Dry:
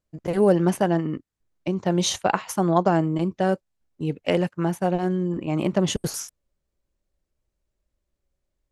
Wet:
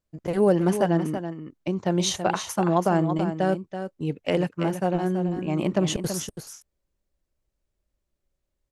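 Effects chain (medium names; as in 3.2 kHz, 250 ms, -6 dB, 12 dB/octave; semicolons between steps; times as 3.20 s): delay 330 ms -9 dB; loudness maximiser +7 dB; trim -8.5 dB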